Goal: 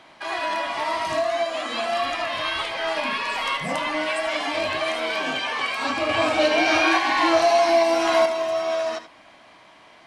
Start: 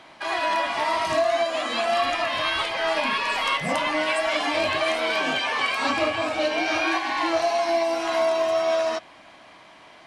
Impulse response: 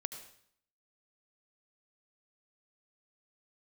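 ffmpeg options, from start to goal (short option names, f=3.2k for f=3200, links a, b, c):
-filter_complex "[0:a]asettb=1/sr,asplit=3[a][b][c];[a]atrim=end=6.094[d];[b]atrim=start=6.09:end=8.26,asetpts=PTS-STARTPTS,afade=t=in:d=0.004:c=qsin,afade=t=out:st=2.166:d=0.004:c=qsin,acontrast=69[e];[c]atrim=start=8.256[f];[d][e]acrossfade=d=0.004:c1=hsin:c2=qsin[g];[g][f]acrossfade=d=0.004:c1=qsin:c2=hsin[h];[1:a]atrim=start_sample=2205,atrim=end_sample=3969[i];[h][i]afir=irnorm=-1:irlink=0"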